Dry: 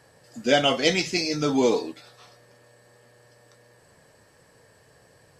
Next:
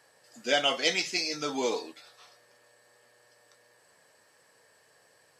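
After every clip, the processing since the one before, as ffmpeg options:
-af "highpass=f=800:p=1,volume=-2.5dB"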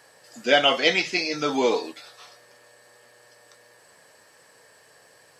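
-filter_complex "[0:a]acrossover=split=4100[a][b];[b]acompressor=threshold=-51dB:ratio=4:attack=1:release=60[c];[a][c]amix=inputs=2:normalize=0,volume=8dB"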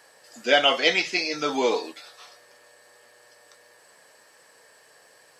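-af "highpass=f=270:p=1"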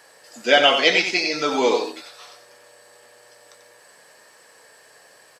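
-af "aecho=1:1:91:0.422,volume=3.5dB"

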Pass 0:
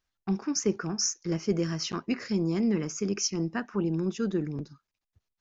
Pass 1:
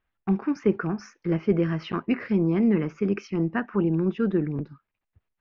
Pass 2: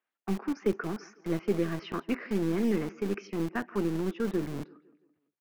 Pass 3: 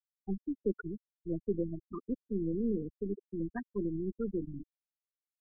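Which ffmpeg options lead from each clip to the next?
-af "lowpass=f=2.7k:w=0.5412,lowpass=f=2.7k:w=1.3066,volume=5dB"
-filter_complex "[0:a]aecho=1:1:168|336|504|672:0.0944|0.0453|0.0218|0.0104,acrossover=split=220|380|2700[a][b][c][d];[a]acrusher=bits=3:dc=4:mix=0:aa=0.000001[e];[e][b][c][d]amix=inputs=4:normalize=0,volume=-5dB"
-af "aeval=exprs='val(0)+0.00708*(sin(2*PI*50*n/s)+sin(2*PI*2*50*n/s)/2+sin(2*PI*3*50*n/s)/3+sin(2*PI*4*50*n/s)/4+sin(2*PI*5*50*n/s)/5)':c=same,afftfilt=real='re*gte(hypot(re,im),0.1)':imag='im*gte(hypot(re,im),0.1)':win_size=1024:overlap=0.75,volume=-4.5dB"

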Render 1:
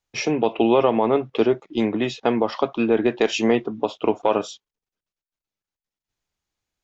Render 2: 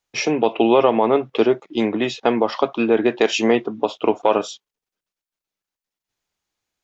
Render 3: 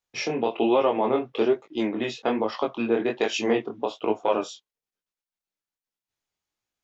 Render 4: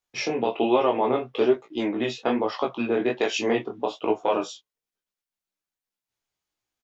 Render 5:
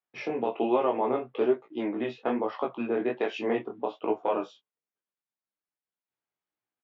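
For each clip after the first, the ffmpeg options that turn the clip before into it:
-af "lowshelf=f=140:g=-10,volume=3.5dB"
-af "flanger=delay=18.5:depth=7.1:speed=1.2,volume=-3.5dB"
-filter_complex "[0:a]asplit=2[a][b];[b]adelay=16,volume=-7dB[c];[a][c]amix=inputs=2:normalize=0"
-af "highpass=140,lowpass=2.2k,volume=-4dB"

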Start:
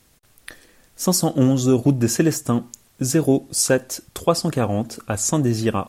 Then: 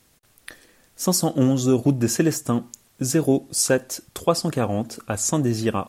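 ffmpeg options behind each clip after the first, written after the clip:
-af "lowshelf=f=66:g=-6.5,volume=-1.5dB"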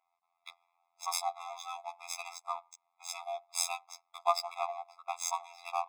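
-af "adynamicsmooth=sensitivity=3.5:basefreq=1k,afftfilt=real='hypot(re,im)*cos(PI*b)':imag='0':win_size=2048:overlap=0.75,afftfilt=real='re*eq(mod(floor(b*sr/1024/670),2),1)':imag='im*eq(mod(floor(b*sr/1024/670),2),1)':win_size=1024:overlap=0.75"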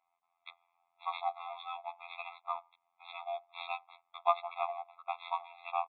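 -af "aresample=8000,aresample=44100"

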